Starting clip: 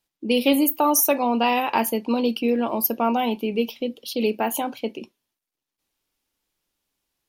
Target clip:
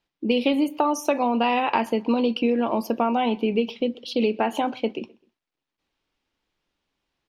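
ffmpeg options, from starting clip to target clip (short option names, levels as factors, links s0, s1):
-filter_complex "[0:a]lowpass=3700,acompressor=threshold=0.0891:ratio=6,asplit=2[s0][s1];[s1]adelay=128,lowpass=f=2600:p=1,volume=0.0668,asplit=2[s2][s3];[s3]adelay=128,lowpass=f=2600:p=1,volume=0.35[s4];[s0][s2][s4]amix=inputs=3:normalize=0,volume=1.5"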